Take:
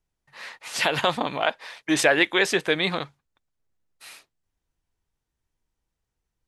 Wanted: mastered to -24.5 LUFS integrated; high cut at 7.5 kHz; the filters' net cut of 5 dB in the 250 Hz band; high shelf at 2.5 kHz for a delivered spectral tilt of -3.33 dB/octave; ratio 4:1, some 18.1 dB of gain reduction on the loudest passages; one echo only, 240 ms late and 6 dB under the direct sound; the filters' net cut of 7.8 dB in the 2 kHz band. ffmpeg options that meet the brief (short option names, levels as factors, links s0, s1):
-af "lowpass=7500,equalizer=f=250:t=o:g=-7.5,equalizer=f=2000:t=o:g=-6.5,highshelf=f=2500:g=-7,acompressor=threshold=0.01:ratio=4,aecho=1:1:240:0.501,volume=7.5"